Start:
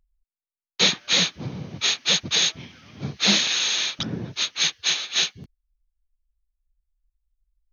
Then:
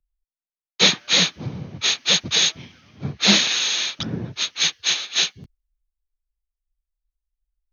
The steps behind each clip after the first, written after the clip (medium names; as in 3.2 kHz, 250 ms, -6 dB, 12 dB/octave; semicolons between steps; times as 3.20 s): three bands expanded up and down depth 40%; trim +2 dB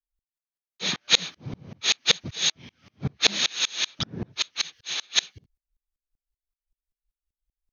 sawtooth tremolo in dB swelling 5.2 Hz, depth 32 dB; trim +3 dB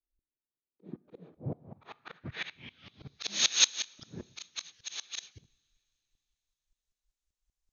slow attack 394 ms; two-slope reverb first 0.57 s, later 3.7 s, from -18 dB, DRR 20 dB; low-pass sweep 340 Hz -> 6.8 kHz, 1.04–3.38 s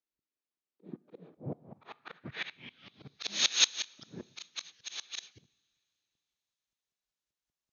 band-pass 150–6300 Hz